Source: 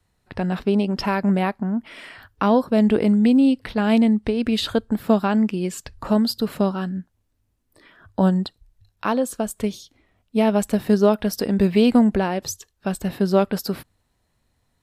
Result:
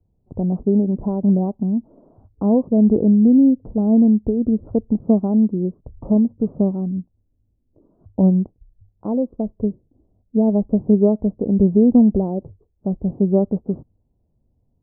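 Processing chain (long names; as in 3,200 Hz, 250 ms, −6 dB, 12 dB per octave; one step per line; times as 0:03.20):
Gaussian smoothing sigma 15 samples
level +4.5 dB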